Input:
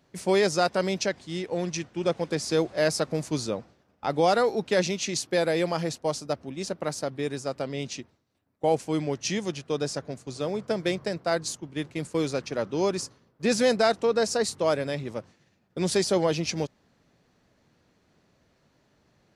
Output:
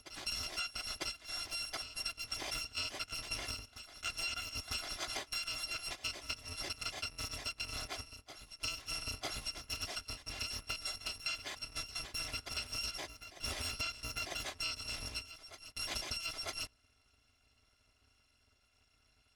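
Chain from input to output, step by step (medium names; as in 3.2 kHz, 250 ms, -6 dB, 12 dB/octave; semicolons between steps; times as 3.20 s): bit-reversed sample order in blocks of 256 samples; low-pass 4.4 kHz 12 dB/octave; compression 12:1, threshold -38 dBFS, peak gain reduction 17 dB; on a send: reverse echo 949 ms -11.5 dB; on the sum: trim +1.5 dB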